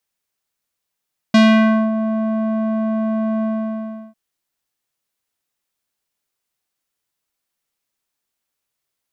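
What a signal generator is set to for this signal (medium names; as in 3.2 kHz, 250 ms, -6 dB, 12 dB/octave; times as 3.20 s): synth note square A3 12 dB/octave, low-pass 860 Hz, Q 1.2, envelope 2.5 oct, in 0.54 s, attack 5.6 ms, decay 0.57 s, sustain -10.5 dB, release 0.71 s, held 2.09 s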